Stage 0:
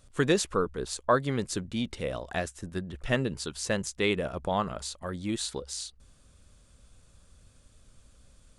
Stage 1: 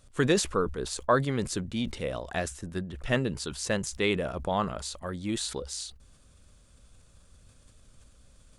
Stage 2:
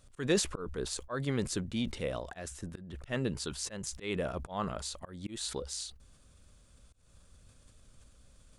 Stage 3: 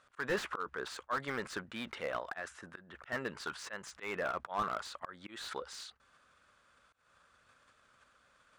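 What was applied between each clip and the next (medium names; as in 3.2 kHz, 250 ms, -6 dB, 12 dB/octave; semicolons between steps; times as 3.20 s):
decay stretcher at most 110 dB/s
slow attack 203 ms; trim -2.5 dB
band-pass filter 1.4 kHz, Q 1.9; slew-rate limiter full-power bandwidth 12 Hz; trim +10 dB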